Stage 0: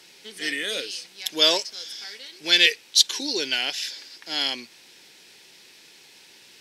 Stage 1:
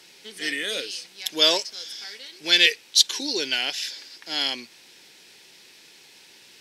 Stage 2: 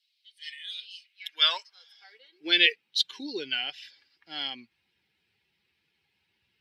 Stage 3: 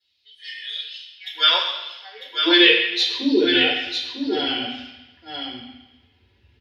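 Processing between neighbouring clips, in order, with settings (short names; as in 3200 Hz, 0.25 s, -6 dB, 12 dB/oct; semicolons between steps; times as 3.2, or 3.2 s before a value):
nothing audible
per-bin expansion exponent 1.5; high-pass sweep 4000 Hz -> 69 Hz, 0.78–3.47; resonant high shelf 4700 Hz -14 dB, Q 1.5; gain -4 dB
echo 0.949 s -6 dB; reverb RT60 1.0 s, pre-delay 3 ms, DRR -7.5 dB; gain -7.5 dB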